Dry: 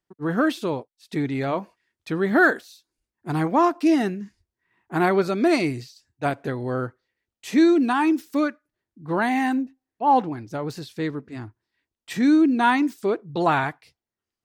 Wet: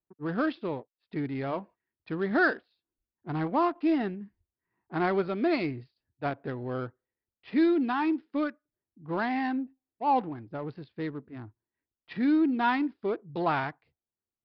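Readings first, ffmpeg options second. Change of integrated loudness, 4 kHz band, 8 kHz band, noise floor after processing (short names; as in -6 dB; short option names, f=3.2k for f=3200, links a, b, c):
-7.0 dB, -8.5 dB, under -30 dB, under -85 dBFS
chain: -af "adynamicsmooth=sensitivity=4.5:basefreq=1.4k,aresample=11025,aresample=44100,volume=-7dB"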